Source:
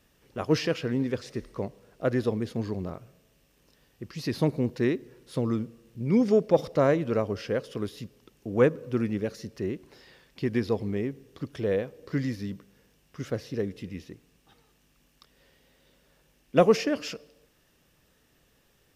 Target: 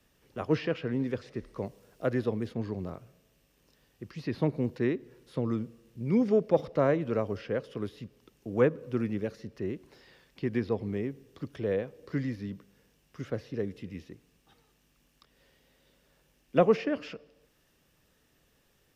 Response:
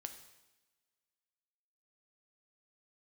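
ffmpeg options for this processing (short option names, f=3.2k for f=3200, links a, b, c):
-filter_complex "[0:a]asettb=1/sr,asplit=3[a][b][c];[a]atrim=end=1.654[d];[b]atrim=start=1.65:end=2.54,asetpts=PTS-STARTPTS,afade=t=in:d=0.004:c=qsin,afade=t=out:st=0.886:d=0.004:c=qsin,highshelf=f=5.1k:g=7[e];[c]atrim=start=2.536[f];[d][e]acrossfade=d=0.004:c1=hsin:c2=qsin[g];[g][f]acrossfade=d=0.004:c1=qsin:c2=hsin,acrossover=split=110|620|3500[h][i][j][k];[k]acompressor=threshold=-60dB:ratio=6[l];[h][i][j][l]amix=inputs=4:normalize=0,volume=-3dB"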